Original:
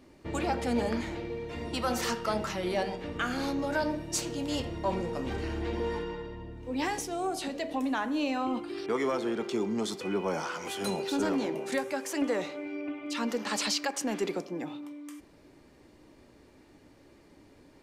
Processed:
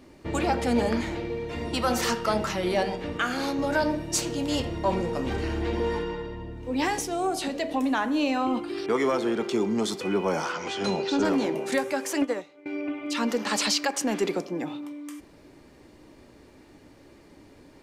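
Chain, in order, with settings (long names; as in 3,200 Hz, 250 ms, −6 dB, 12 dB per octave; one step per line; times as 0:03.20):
0:03.16–0:03.59: low-shelf EQ 170 Hz −10 dB
0:10.52–0:11.25: low-pass filter 6,300 Hz 24 dB per octave
0:12.22–0:12.66: expander for the loud parts 2.5 to 1, over −38 dBFS
level +5 dB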